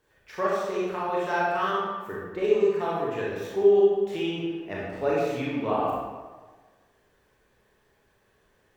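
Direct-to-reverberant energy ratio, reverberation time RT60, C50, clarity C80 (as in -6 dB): -6.5 dB, 1.4 s, -2.0 dB, 1.0 dB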